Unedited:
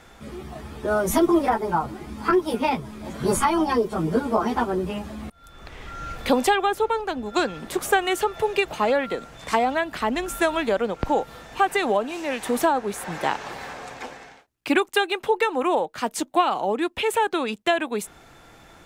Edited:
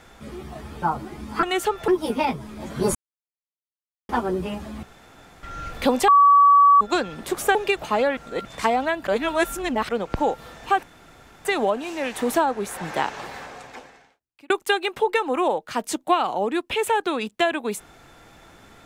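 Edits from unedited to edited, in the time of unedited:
0.82–1.71 s: delete
3.39–4.53 s: mute
5.27–5.87 s: room tone
6.52–7.25 s: bleep 1.14 kHz -10 dBFS
7.99–8.44 s: move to 2.32 s
9.06–9.34 s: reverse
9.96–10.78 s: reverse
11.72 s: insert room tone 0.62 s
13.48–14.77 s: fade out

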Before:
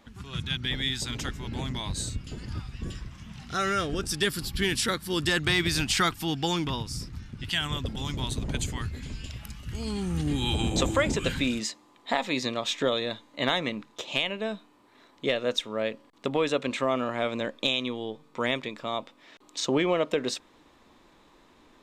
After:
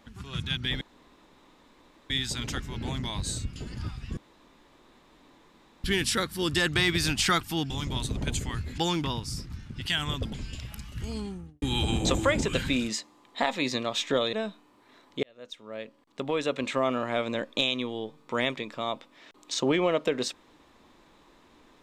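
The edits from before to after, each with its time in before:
0.81 s: insert room tone 1.29 s
2.88–4.55 s: room tone
7.97–9.05 s: move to 6.41 s
9.70–10.33 s: studio fade out
13.04–14.39 s: delete
15.29–16.85 s: fade in

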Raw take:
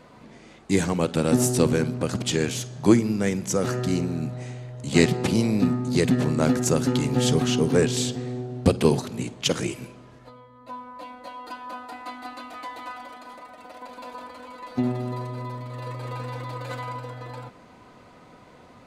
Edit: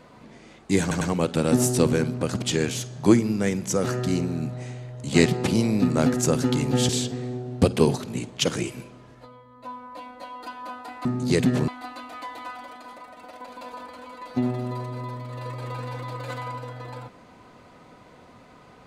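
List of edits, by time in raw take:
0.81 s: stutter 0.10 s, 3 plays
5.70–6.33 s: move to 12.09 s
7.32–7.93 s: delete

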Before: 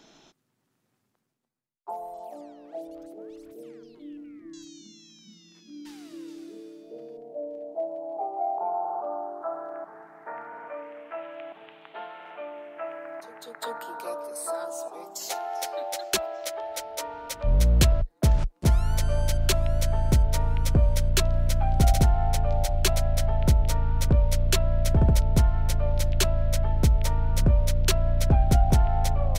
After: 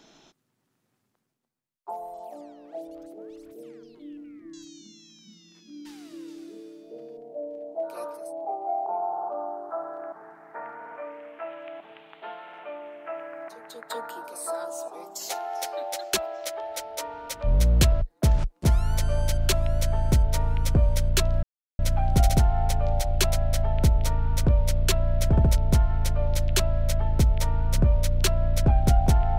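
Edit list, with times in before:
14.03–14.31 s: move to 7.93 s, crossfade 0.24 s
21.43 s: insert silence 0.36 s

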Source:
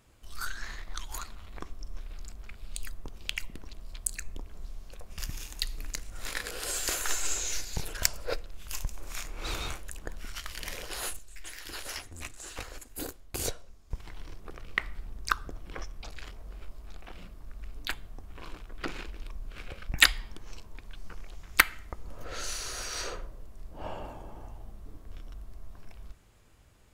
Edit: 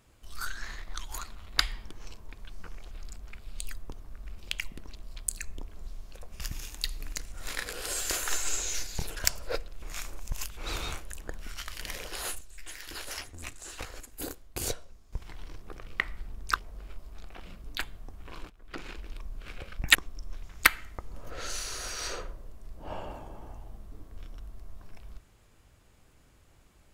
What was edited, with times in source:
1.59–2.07 s: swap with 20.05–21.37 s
8.60–9.35 s: reverse
15.34–16.28 s: delete
17.36–17.74 s: move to 3.16 s
18.60–19.15 s: fade in, from -16.5 dB

